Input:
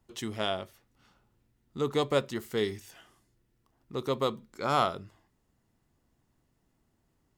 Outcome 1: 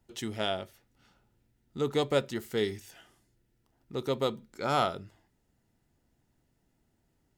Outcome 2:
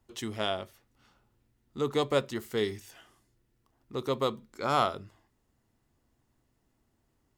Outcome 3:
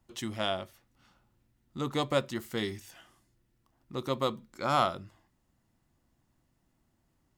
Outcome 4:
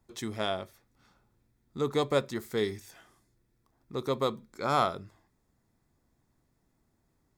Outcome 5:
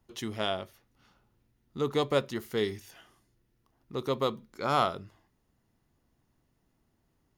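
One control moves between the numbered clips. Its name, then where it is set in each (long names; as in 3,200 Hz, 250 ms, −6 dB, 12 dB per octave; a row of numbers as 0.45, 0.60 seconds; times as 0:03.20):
notch filter, centre frequency: 1,100, 170, 430, 2,900, 7,800 Hertz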